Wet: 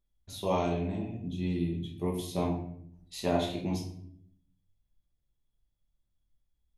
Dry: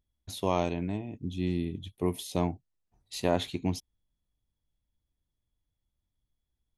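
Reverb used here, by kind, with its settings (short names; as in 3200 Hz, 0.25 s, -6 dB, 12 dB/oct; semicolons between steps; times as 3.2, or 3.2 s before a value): shoebox room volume 110 m³, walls mixed, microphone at 1.2 m; gain -6.5 dB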